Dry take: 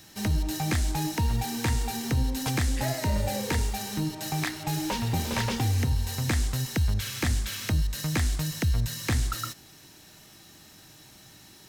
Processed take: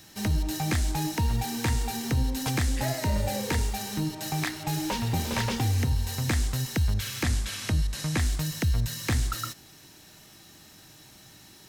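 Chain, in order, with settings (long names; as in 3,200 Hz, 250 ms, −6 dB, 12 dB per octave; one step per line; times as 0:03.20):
0:07.23–0:08.20: variable-slope delta modulation 64 kbit/s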